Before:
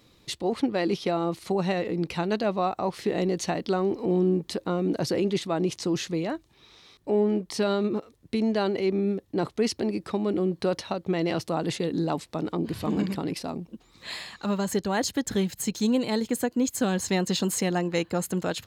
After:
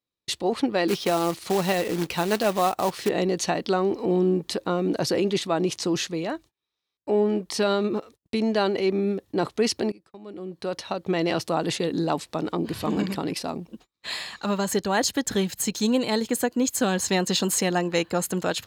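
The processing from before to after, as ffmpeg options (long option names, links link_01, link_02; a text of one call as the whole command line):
ffmpeg -i in.wav -filter_complex "[0:a]asettb=1/sr,asplit=3[link_01][link_02][link_03];[link_01]atrim=end=0.884[link_04];[link_02]atrim=start=0.88:end=3.09,asetpts=PTS-STARTPTS,afade=type=in:duration=0.004:curve=qsin,afade=type=out:start_time=2.206:duration=0.004:curve=qsin,acrusher=bits=3:mode=log:mix=0:aa=0.000001[link_05];[link_03]atrim=start=3.086[link_06];[link_04][link_05]acrossfade=duration=0.004:curve1=hsin:curve2=qsin[link_07];[link_07][link_06]acrossfade=duration=0.004:curve1=qsin:curve2=hsin,asplit=3[link_08][link_09][link_10];[link_08]atrim=end=6.07,asetpts=PTS-STARTPTS,afade=type=out:start_time=6.066:duration=0.004:curve=hsin:silence=0.141254[link_11];[link_09]atrim=start=6.07:end=9.92,asetpts=PTS-STARTPTS,afade=type=in:duration=2.67:curve=log:silence=0.141254,afade=type=out:start_time=3.846:duration=0.004:curve=hsin:silence=0.0794328[link_12];[link_10]atrim=start=9.92,asetpts=PTS-STARTPTS,afade=type=in:duration=1.17:curve=qua:silence=0.0794328[link_13];[link_11][link_12][link_13]concat=n=3:v=0:a=1,agate=range=-35dB:threshold=-47dB:ratio=16:detection=peak,lowshelf=frequency=340:gain=-6.5,bandreject=frequency=2100:width=24,volume=5dB" out.wav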